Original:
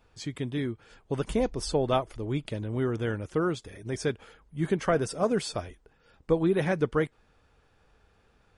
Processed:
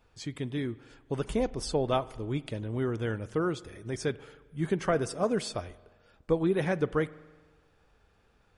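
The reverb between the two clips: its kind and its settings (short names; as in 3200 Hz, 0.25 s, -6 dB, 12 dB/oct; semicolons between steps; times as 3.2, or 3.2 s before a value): spring tank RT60 1.4 s, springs 44 ms, chirp 70 ms, DRR 18.5 dB; gain -2 dB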